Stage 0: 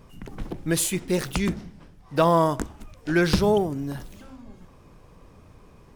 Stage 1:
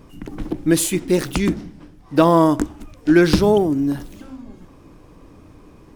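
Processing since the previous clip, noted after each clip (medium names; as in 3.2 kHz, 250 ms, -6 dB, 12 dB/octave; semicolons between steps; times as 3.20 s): peaking EQ 300 Hz +11 dB 0.43 oct; trim +3.5 dB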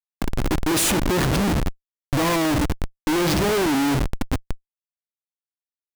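Schmitt trigger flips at -29.5 dBFS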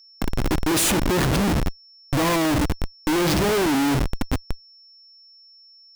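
whistle 5.4 kHz -48 dBFS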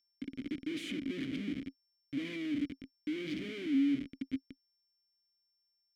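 vowel filter i; trim -5.5 dB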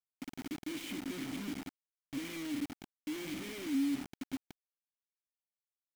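bit crusher 7-bit; trim -3 dB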